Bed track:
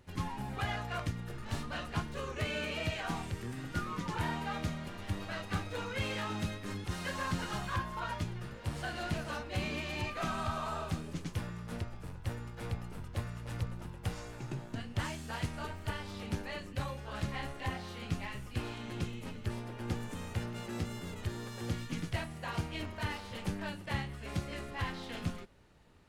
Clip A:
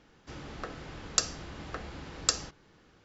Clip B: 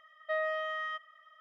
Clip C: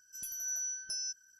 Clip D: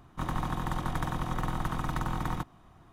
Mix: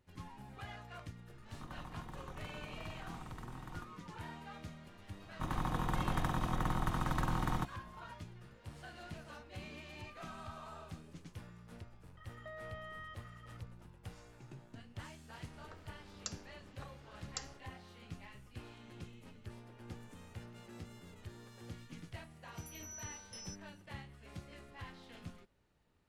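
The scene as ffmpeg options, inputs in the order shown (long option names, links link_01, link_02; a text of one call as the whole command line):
ffmpeg -i bed.wav -i cue0.wav -i cue1.wav -i cue2.wav -i cue3.wav -filter_complex "[4:a]asplit=2[link_01][link_02];[0:a]volume=-12.5dB[link_03];[link_02]dynaudnorm=framelen=280:gausssize=3:maxgain=3dB[link_04];[2:a]acompressor=threshold=-47dB:ratio=6:attack=3.2:release=140:knee=1:detection=peak[link_05];[link_01]atrim=end=2.92,asetpts=PTS-STARTPTS,volume=-17.5dB,afade=type=in:duration=0.004:curve=hsin,afade=type=out:start_time=2.916:duration=0.004:curve=hsin,adelay=1420[link_06];[link_04]atrim=end=2.92,asetpts=PTS-STARTPTS,volume=-6dB,afade=type=in:duration=0.004:curve=hsin,afade=type=out:start_time=2.916:duration=0.004:curve=hsin,adelay=5220[link_07];[link_05]atrim=end=1.4,asetpts=PTS-STARTPTS,volume=-0.5dB,afade=type=in:duration=0.004:curve=hsin,afade=type=out:start_time=1.396:duration=0.004:curve=hsin,adelay=12170[link_08];[1:a]atrim=end=3.04,asetpts=PTS-STARTPTS,volume=-17dB,afade=type=in:duration=0.004:curve=hsin,afade=type=out:start_time=3.036:duration=0.004:curve=hsin,adelay=665028S[link_09];[3:a]atrim=end=1.39,asetpts=PTS-STARTPTS,volume=-13dB,afade=type=in:duration=0.004:curve=hsin,afade=type=out:start_time=1.386:duration=0.004:curve=hsin,adelay=22430[link_10];[link_03][link_06][link_07][link_08][link_09][link_10]amix=inputs=6:normalize=0" out.wav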